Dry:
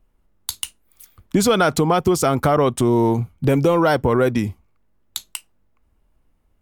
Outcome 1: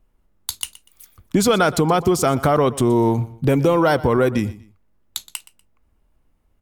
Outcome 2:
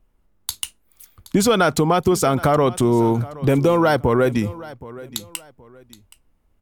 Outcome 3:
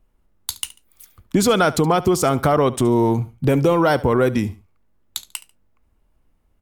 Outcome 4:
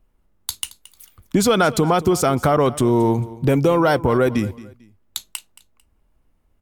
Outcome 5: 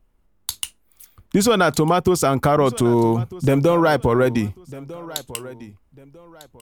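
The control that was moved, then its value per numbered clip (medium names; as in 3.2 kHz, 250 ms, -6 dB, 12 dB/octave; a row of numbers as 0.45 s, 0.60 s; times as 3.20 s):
feedback delay, time: 121 ms, 772 ms, 71 ms, 223 ms, 1249 ms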